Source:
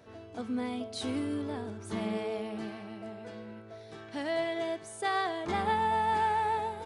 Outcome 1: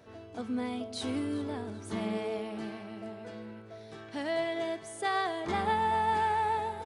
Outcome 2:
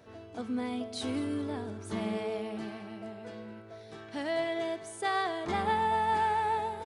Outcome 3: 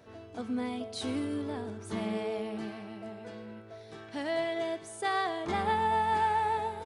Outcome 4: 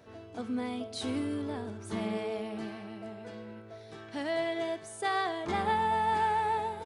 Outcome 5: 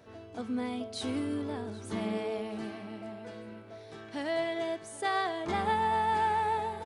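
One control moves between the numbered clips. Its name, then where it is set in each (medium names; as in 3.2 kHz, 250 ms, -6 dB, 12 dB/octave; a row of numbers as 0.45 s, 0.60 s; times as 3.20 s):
feedback delay, time: 392 ms, 214 ms, 116 ms, 63 ms, 781 ms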